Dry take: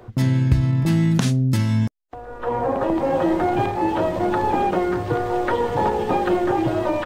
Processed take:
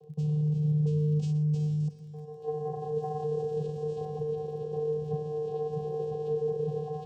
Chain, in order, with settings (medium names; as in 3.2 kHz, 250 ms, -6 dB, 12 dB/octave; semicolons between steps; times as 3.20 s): peak limiter -15 dBFS, peak gain reduction 10.5 dB; inverse Chebyshev band-stop 910–2200 Hz, stop band 50 dB; tone controls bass -12 dB, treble 0 dB; vocoder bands 8, square 151 Hz; 1.80–4.05 s: treble shelf 4.6 kHz +10 dB; multi-head delay 121 ms, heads first and third, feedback 41%, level -14.5 dB; crackle 18 per s -53 dBFS